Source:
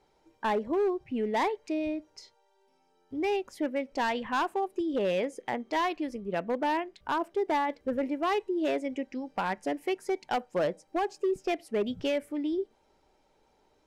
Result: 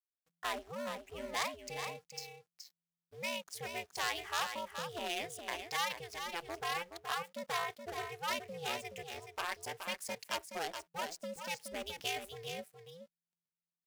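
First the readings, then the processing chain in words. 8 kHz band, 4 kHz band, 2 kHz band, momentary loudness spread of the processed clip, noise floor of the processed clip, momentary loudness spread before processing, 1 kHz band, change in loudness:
+7.5 dB, +2.0 dB, −3.0 dB, 9 LU, below −85 dBFS, 5 LU, −8.5 dB, −8.5 dB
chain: slack as between gear wheels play −50 dBFS
ring modulation 170 Hz
first-order pre-emphasis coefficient 0.97
single-tap delay 423 ms −7.5 dB
level +11 dB

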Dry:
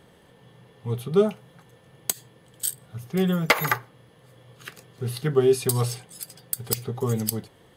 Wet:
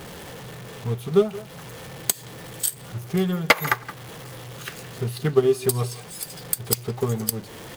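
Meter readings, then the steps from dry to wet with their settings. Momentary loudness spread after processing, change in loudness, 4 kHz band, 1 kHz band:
18 LU, +1.0 dB, +2.5 dB, +1.5 dB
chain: converter with a step at zero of −31 dBFS
far-end echo of a speakerphone 170 ms, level −11 dB
transient designer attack +6 dB, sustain −5 dB
level −3 dB

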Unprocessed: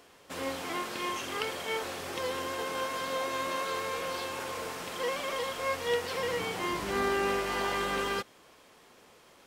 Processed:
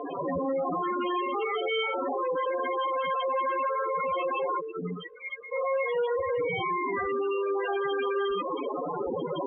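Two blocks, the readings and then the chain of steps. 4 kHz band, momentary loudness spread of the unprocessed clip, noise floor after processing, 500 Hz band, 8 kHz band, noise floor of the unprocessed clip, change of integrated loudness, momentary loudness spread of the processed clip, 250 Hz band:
−3.0 dB, 6 LU, −38 dBFS, +6.0 dB, below −40 dB, −58 dBFS, +3.5 dB, 4 LU, +5.0 dB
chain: reverb whose tail is shaped and stops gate 210 ms flat, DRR −5.5 dB
in parallel at −6.5 dB: fuzz pedal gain 52 dB, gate −56 dBFS
on the sum: spectral peaks only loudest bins 8
elliptic low-pass filter 3,400 Hz
downward compressor, threshold −24 dBFS, peak gain reduction 8.5 dB
brickwall limiter −24.5 dBFS, peak gain reduction 6.5 dB
gain on a spectral selection 0:04.60–0:05.52, 460–1,200 Hz −28 dB
level +2 dB

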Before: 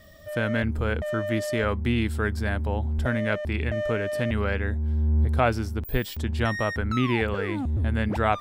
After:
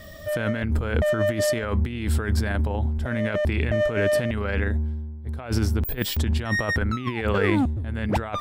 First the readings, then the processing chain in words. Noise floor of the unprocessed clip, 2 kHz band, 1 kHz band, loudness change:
−37 dBFS, +1.0 dB, −2.5 dB, +1.5 dB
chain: compressor whose output falls as the input rises −28 dBFS, ratio −0.5
level +5 dB

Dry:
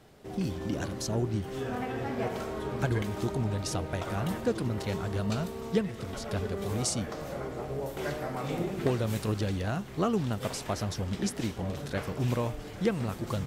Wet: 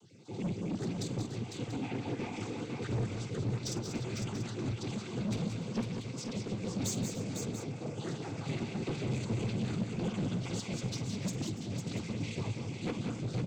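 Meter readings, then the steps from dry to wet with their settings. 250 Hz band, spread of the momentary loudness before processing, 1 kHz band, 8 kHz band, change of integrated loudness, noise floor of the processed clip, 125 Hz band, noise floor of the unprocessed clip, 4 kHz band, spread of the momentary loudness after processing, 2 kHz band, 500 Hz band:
−3.0 dB, 5 LU, −9.5 dB, −3.5 dB, −4.5 dB, −44 dBFS, −3.0 dB, −42 dBFS, −3.0 dB, 5 LU, −6.0 dB, −8.5 dB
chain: time-frequency cells dropped at random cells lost 35%
flat-topped bell 1,200 Hz −11.5 dB 1 octave
comb filter 0.8 ms, depth 78%
cochlear-implant simulation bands 16
soft clipping −29 dBFS, distortion −8 dB
multi-tap delay 48/172/190/289/502/687 ms −13.5/−12.5/−8/−16.5/−6/−12 dB
level −1.5 dB

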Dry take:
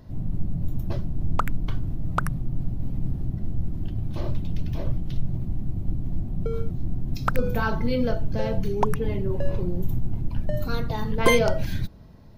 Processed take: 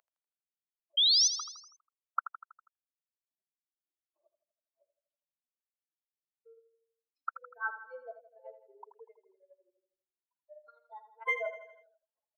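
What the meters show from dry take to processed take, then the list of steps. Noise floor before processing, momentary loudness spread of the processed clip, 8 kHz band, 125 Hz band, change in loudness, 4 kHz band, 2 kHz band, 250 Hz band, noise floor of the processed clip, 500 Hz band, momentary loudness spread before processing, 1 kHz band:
−33 dBFS, 23 LU, can't be measured, below −40 dB, −0.5 dB, +8.5 dB, −7.5 dB, below −40 dB, below −85 dBFS, −19.0 dB, 6 LU, −12.0 dB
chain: expanding power law on the bin magnitudes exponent 2.6
Bessel high-pass filter 1,100 Hz, order 8
parametric band 4,200 Hz −6 dB 2.4 octaves
sound drawn into the spectrogram rise, 0:00.97–0:01.28, 3,100–6,300 Hz −23 dBFS
repeating echo 81 ms, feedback 54%, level −11 dB
level −1 dB

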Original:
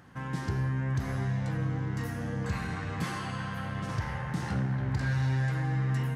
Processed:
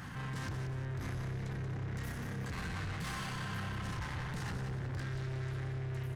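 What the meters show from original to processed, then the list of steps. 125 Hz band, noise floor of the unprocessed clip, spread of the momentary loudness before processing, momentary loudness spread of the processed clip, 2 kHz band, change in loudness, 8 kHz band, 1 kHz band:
−8.0 dB, −37 dBFS, 6 LU, 1 LU, −5.5 dB, −7.5 dB, −2.0 dB, −7.0 dB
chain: in parallel at −1 dB: compressor whose output falls as the input rises −36 dBFS
on the sum: parametric band 470 Hz −9.5 dB 1.9 octaves
soft clipping −35 dBFS, distortion −9 dB
brickwall limiter −45 dBFS, peak gain reduction 10 dB
echo with shifted repeats 182 ms, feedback 45%, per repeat −34 Hz, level −7.5 dB
level +7.5 dB

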